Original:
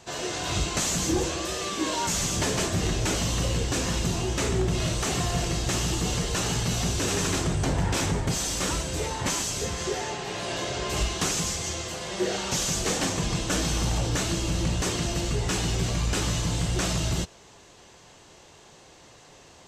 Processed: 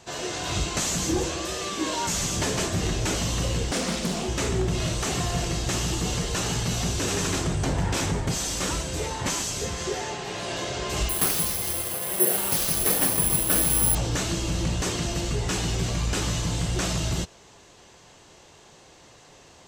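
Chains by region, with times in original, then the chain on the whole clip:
3.71–4.28 s: resonant low shelf 150 Hz -11.5 dB, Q 3 + comb 1.6 ms, depth 50% + loudspeaker Doppler distortion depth 0.46 ms
11.09–13.95 s: tone controls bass -2 dB, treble -9 dB + careless resampling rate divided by 4×, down none, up zero stuff + band-stop 6.9 kHz, Q 15
whole clip: none

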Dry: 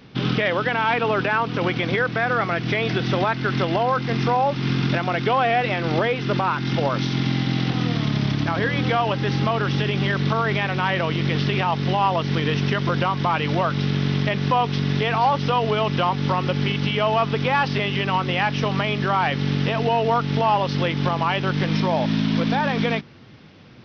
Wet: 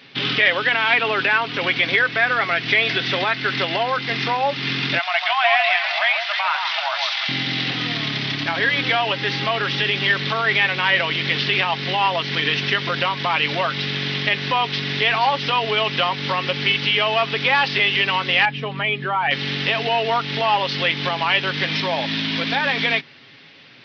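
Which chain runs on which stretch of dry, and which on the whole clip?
4.99–7.29 s: brick-wall FIR high-pass 590 Hz + echo whose repeats swap between lows and highs 149 ms, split 1.2 kHz, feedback 55%, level -3 dB
18.45–19.31 s: spectral contrast enhancement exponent 1.5 + distance through air 110 m
whole clip: high-pass 460 Hz 6 dB/octave; high-order bell 2.8 kHz +8.5 dB; comb 7.3 ms, depth 40%

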